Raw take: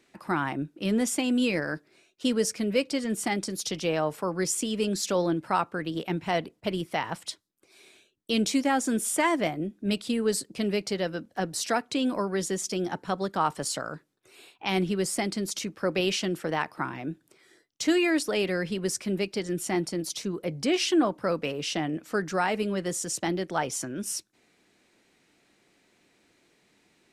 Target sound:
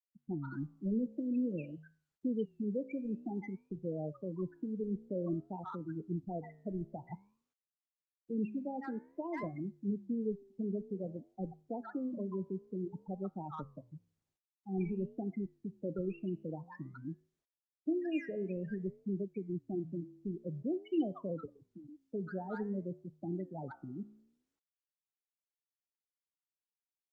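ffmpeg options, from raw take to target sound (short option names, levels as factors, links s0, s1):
-filter_complex "[0:a]asettb=1/sr,asplit=3[s0][s1][s2];[s0]atrim=end=8.474[s3];[s1]atrim=start=8.47:end=9.43,asetpts=PTS-STARTPTS,afade=t=in:d=0.004:c=qsin,afade=t=out:st=0.956:d=0.004:c=qsin,acrossover=split=260 4000:gain=0.178 1 0.1[s4][s5][s6];[s4][s5][s6]amix=inputs=3:normalize=0[s7];[s2]atrim=start=9.426[s8];[s3][s7]acrossfade=d=0.004:c1=hsin:c2=qsin[s9];[s9][s8]acrossfade=d=0.004:c1=qsin:c2=hsin,acrossover=split=890|4900[s10][s11][s12];[s12]adelay=70[s13];[s11]adelay=130[s14];[s10][s14][s13]amix=inputs=3:normalize=0,asettb=1/sr,asplit=3[s15][s16][s17];[s15]atrim=end=21.454[s18];[s16]atrim=start=21.45:end=22.13,asetpts=PTS-STARTPTS,afade=t=in:d=0.004:c=qsin,afade=t=out:st=0.676:d=0.004:c=qsin,acrossover=split=130|560[s19][s20][s21];[s19]acompressor=threshold=0.002:ratio=4[s22];[s20]acompressor=threshold=0.00794:ratio=4[s23];[s21]acompressor=threshold=0.0112:ratio=4[s24];[s22][s23][s24]amix=inputs=3:normalize=0[s25];[s17]atrim=start=22.126[s26];[s18][s25]acrossfade=d=0.004:c1=hsin:c2=qsin[s27];[s27][s26]acrossfade=d=0.004:c1=qsin:c2=hsin,aemphasis=mode=reproduction:type=bsi,afftfilt=real='re*gte(hypot(re,im),0.141)':imag='im*gte(hypot(re,im),0.141)':win_size=1024:overlap=0.75,flanger=delay=9.4:depth=7.3:regen=-86:speed=0.52:shape=sinusoidal,acrossover=split=260|1100|2600[s28][s29][s30][s31];[s30]asoftclip=type=tanh:threshold=0.0126[s32];[s28][s29][s32][s31]amix=inputs=4:normalize=0,volume=0.398" -ar 48000 -c:a libopus -b:a 48k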